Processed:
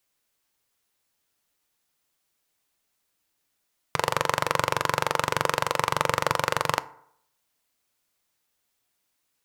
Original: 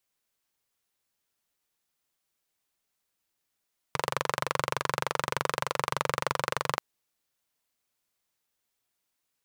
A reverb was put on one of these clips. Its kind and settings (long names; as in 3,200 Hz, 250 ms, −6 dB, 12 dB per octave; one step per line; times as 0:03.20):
feedback delay network reverb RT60 0.69 s, low-frequency decay 0.85×, high-frequency decay 0.5×, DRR 15 dB
level +5 dB